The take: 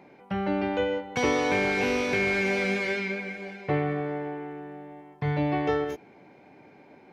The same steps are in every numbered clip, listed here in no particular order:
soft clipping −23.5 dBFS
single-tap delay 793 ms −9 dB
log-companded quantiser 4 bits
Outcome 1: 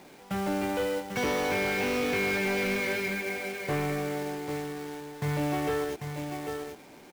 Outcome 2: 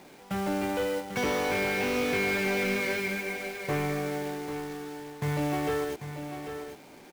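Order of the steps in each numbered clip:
single-tap delay, then log-companded quantiser, then soft clipping
log-companded quantiser, then soft clipping, then single-tap delay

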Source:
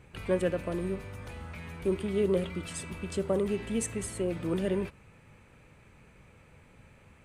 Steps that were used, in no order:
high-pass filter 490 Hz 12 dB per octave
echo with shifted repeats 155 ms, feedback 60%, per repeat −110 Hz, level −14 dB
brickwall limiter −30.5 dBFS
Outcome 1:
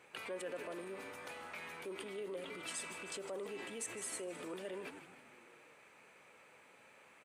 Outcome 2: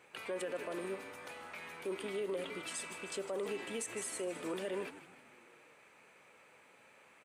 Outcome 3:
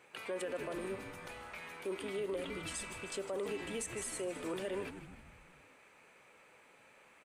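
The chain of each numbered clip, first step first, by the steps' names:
echo with shifted repeats, then brickwall limiter, then high-pass filter
echo with shifted repeats, then high-pass filter, then brickwall limiter
high-pass filter, then echo with shifted repeats, then brickwall limiter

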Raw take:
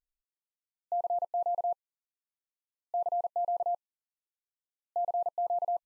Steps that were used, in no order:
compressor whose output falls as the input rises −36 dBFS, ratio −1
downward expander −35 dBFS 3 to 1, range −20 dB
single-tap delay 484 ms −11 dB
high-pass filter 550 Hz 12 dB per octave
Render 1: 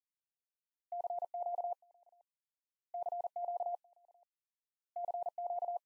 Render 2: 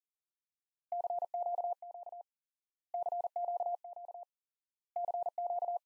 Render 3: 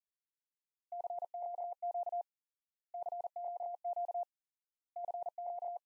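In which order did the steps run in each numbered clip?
compressor whose output falls as the input rises, then single-tap delay, then downward expander, then high-pass filter
downward expander, then high-pass filter, then compressor whose output falls as the input rises, then single-tap delay
single-tap delay, then compressor whose output falls as the input rises, then downward expander, then high-pass filter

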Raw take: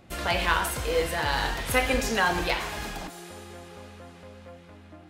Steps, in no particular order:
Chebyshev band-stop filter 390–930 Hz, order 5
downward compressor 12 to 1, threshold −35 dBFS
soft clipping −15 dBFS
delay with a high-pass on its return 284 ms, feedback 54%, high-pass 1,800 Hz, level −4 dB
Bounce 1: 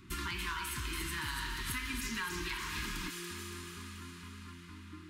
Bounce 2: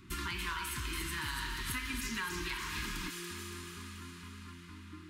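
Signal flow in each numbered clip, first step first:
soft clipping, then Chebyshev band-stop filter, then downward compressor, then delay with a high-pass on its return
Chebyshev band-stop filter, then soft clipping, then downward compressor, then delay with a high-pass on its return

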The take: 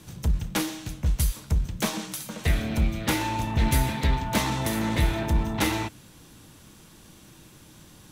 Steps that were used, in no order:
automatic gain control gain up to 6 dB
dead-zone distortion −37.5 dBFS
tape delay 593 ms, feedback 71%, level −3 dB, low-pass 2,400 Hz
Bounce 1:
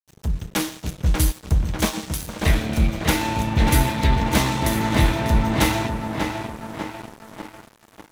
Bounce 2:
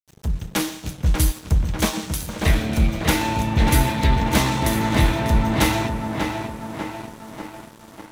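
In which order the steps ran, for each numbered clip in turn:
tape delay, then dead-zone distortion, then automatic gain control
automatic gain control, then tape delay, then dead-zone distortion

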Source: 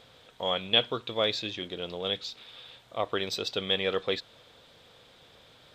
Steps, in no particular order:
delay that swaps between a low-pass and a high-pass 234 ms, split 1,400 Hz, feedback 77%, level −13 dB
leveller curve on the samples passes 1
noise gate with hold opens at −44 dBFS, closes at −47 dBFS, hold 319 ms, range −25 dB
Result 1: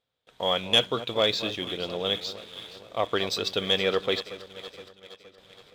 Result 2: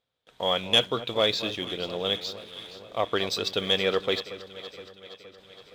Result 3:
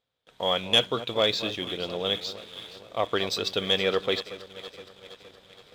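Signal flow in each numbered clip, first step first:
noise gate with hold, then delay that swaps between a low-pass and a high-pass, then leveller curve on the samples
leveller curve on the samples, then noise gate with hold, then delay that swaps between a low-pass and a high-pass
delay that swaps between a low-pass and a high-pass, then leveller curve on the samples, then noise gate with hold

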